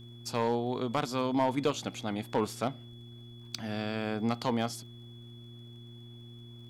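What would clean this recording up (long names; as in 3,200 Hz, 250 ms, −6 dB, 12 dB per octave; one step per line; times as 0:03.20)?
clipped peaks rebuilt −19.5 dBFS
click removal
hum removal 118.2 Hz, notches 3
notch filter 3,400 Hz, Q 30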